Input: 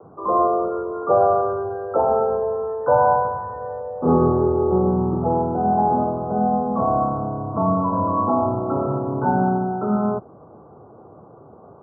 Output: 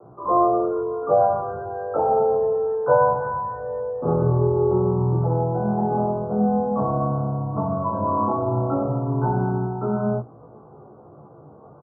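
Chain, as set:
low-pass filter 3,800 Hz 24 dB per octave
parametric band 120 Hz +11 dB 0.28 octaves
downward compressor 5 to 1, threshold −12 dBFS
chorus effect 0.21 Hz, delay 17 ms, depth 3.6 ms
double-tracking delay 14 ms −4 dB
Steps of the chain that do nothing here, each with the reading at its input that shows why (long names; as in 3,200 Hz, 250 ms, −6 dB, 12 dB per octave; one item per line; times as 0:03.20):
low-pass filter 3,800 Hz: nothing at its input above 1,500 Hz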